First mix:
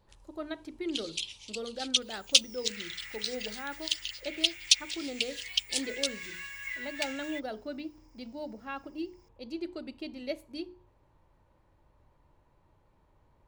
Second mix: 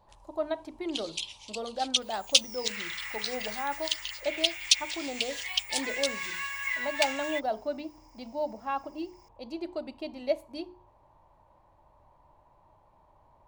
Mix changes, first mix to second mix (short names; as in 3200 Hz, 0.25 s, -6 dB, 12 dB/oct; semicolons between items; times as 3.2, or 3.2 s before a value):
second sound +6.5 dB; master: add band shelf 810 Hz +11 dB 1.1 oct